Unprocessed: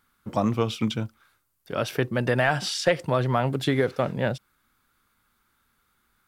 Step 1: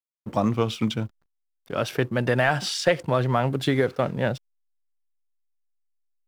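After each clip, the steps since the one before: backlash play -45 dBFS; gain +1 dB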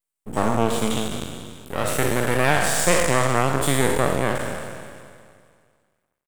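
spectral trails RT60 2.18 s; resonant high shelf 6500 Hz +9 dB, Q 3; half-wave rectifier; gain +1.5 dB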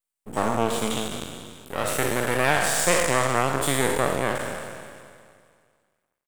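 low shelf 260 Hz -6 dB; gain -1 dB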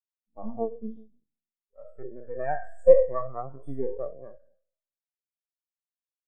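spectral expander 4:1

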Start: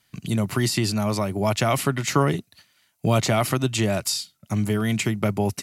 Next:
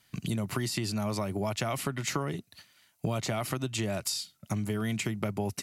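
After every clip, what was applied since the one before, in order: compressor 5:1, threshold -29 dBFS, peak gain reduction 14 dB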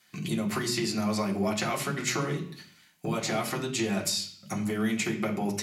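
reverb RT60 0.55 s, pre-delay 3 ms, DRR -2.5 dB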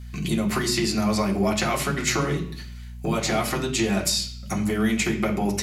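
buzz 60 Hz, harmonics 4, -43 dBFS -9 dB/oct; gain +5.5 dB

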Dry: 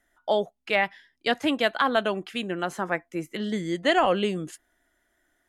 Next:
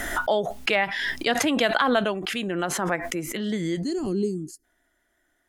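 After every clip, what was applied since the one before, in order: spectral gain 3.82–4.64, 450–4100 Hz -25 dB; backwards sustainer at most 27 dB/s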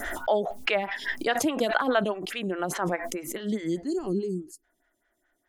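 photocell phaser 4.8 Hz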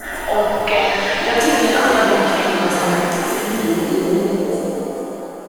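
on a send: frequency-shifting echo 0.438 s, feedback 45%, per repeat +72 Hz, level -10 dB; on the sum: shimmer reverb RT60 2.7 s, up +7 st, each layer -8 dB, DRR -8 dB; gain +2 dB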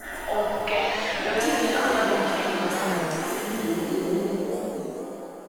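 record warp 33 1/3 rpm, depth 160 cents; gain -8.5 dB

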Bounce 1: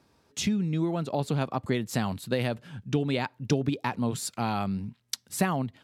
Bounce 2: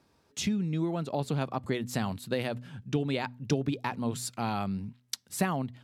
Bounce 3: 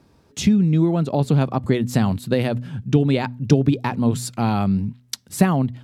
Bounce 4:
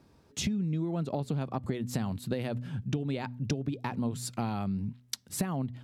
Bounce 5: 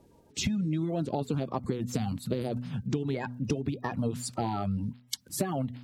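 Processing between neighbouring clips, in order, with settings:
de-hum 123.1 Hz, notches 2; gain -2.5 dB
low shelf 430 Hz +9 dB; gain +6 dB
compressor 6:1, threshold -23 dBFS, peak gain reduction 14 dB; gain -5.5 dB
bin magnitudes rounded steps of 30 dB; gain +2 dB

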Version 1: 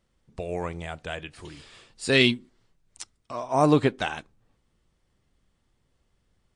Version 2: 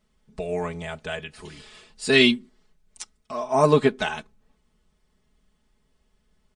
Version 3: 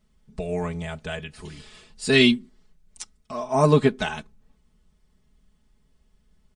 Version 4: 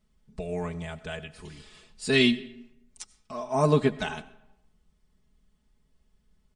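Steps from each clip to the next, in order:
comb 4.7 ms, depth 89%
tone controls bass +7 dB, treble +2 dB; gain -1.5 dB
digital reverb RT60 0.85 s, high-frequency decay 0.65×, pre-delay 50 ms, DRR 17 dB; gain -4.5 dB

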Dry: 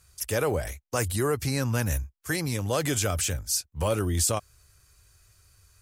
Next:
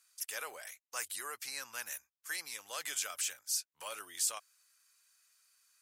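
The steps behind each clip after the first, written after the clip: HPF 1300 Hz 12 dB/oct; gain -7 dB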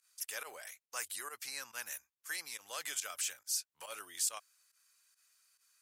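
pump 140 bpm, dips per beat 1, -16 dB, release 74 ms; gain -1 dB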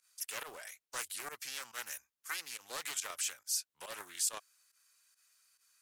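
Doppler distortion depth 0.3 ms; gain +1 dB

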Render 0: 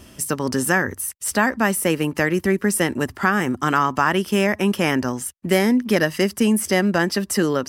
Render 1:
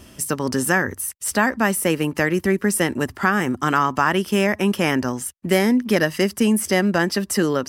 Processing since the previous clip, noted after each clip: nothing audible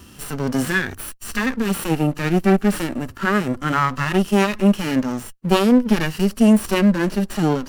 minimum comb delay 0.7 ms; harmonic-percussive split percussive -18 dB; gain +6 dB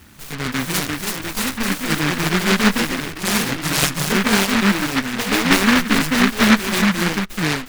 echoes that change speed 0.406 s, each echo +2 st, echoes 2; noise-modulated delay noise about 1600 Hz, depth 0.4 ms; gain -2 dB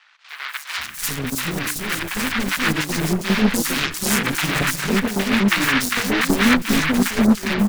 step gate "xx.xxxx.xxx.xx" 185 bpm -12 dB; three bands offset in time mids, highs, lows 0.29/0.78 s, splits 930/4600 Hz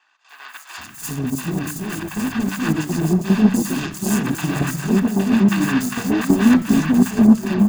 reverb RT60 1.1 s, pre-delay 3 ms, DRR 16.5 dB; gain -3 dB

